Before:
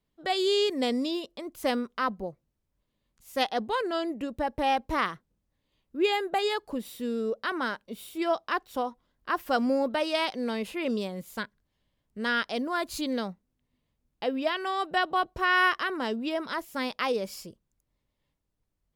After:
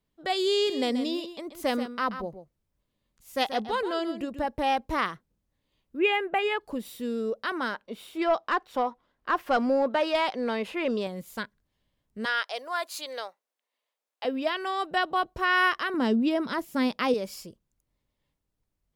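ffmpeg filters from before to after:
-filter_complex "[0:a]asettb=1/sr,asplit=3[a][b][c];[a]atrim=end=0.544[d];[b]atrim=start=0.54:end=4.46,asetpts=PTS-STARTPTS,afade=t=in:d=0.004:c=qsin,afade=t=out:st=3.916:d=0.004:c=qsin,aecho=1:1:132:0.299,atrim=end_sample=172872[e];[c]atrim=start=4.456[f];[d][e]acrossfade=d=0.004:c1=hsin:c2=qsin[g];[g][f]acrossfade=d=0.004:c1=qsin:c2=hsin,asettb=1/sr,asplit=3[h][i][j];[h]atrim=end=5.994[k];[i]atrim=start=5.99:end=6.61,asetpts=PTS-STARTPTS,afade=t=in:d=0.004:c=qsin,afade=t=out:st=0.616:d=0.004:c=qsin,highshelf=f=3.4k:t=q:w=3:g=-9.5[l];[j]atrim=start=6.606[m];[k][l]acrossfade=d=0.004:c1=hsin:c2=qsin[n];[n][m]acrossfade=d=0.004:c1=qsin:c2=hsin,asettb=1/sr,asplit=3[o][p][q];[o]atrim=end=7.744[r];[p]atrim=start=7.74:end=11.07,asetpts=PTS-STARTPTS,afade=t=in:d=0.004:c=qsin,afade=t=out:st=3.326:d=0.004:c=qsin,asplit=2[s][t];[t]highpass=f=720:p=1,volume=13dB,asoftclip=type=tanh:threshold=-12.5dB[u];[s][u]amix=inputs=2:normalize=0,lowpass=f=1.6k:p=1,volume=-6dB[v];[q]atrim=start=11.066[w];[r][v]acrossfade=d=0.004:c1=hsin:c2=qsin[x];[x][w]acrossfade=d=0.004:c1=qsin:c2=hsin,asettb=1/sr,asplit=3[y][z][aa];[y]atrim=end=12.254[ab];[z]atrim=start=12.25:end=14.25,asetpts=PTS-STARTPTS,afade=t=in:d=0.004:c=qsin,afade=t=out:st=1.996:d=0.004:c=qsin,highpass=f=530:w=0.5412,highpass=f=530:w=1.3066[ac];[aa]atrim=start=14.246[ad];[ab][ac]acrossfade=d=0.004:c1=hsin:c2=qsin[ae];[ae][ad]acrossfade=d=0.004:c1=qsin:c2=hsin,asettb=1/sr,asplit=3[af][ag][ah];[af]atrim=end=15.944[ai];[ag]atrim=start=15.94:end=17.14,asetpts=PTS-STARTPTS,afade=t=in:d=0.004:c=qsin,afade=t=out:st=1.196:d=0.004:c=qsin,equalizer=f=210:t=o:w=1.8:g=10[aj];[ah]atrim=start=17.136[ak];[ai][aj]acrossfade=d=0.004:c1=hsin:c2=qsin[al];[al][ak]acrossfade=d=0.004:c1=qsin:c2=hsin"

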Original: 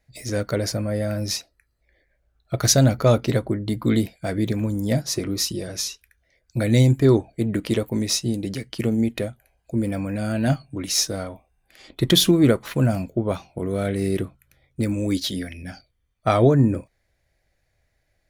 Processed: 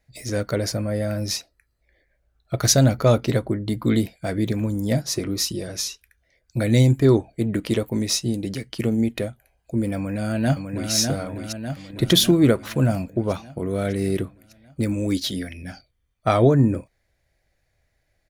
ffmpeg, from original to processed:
-filter_complex "[0:a]asplit=2[a][b];[b]afade=t=in:st=9.96:d=0.01,afade=t=out:st=10.92:d=0.01,aecho=0:1:600|1200|1800|2400|3000|3600|4200|4800:0.562341|0.337405|0.202443|0.121466|0.0728794|0.0437277|0.0262366|0.015742[c];[a][c]amix=inputs=2:normalize=0"

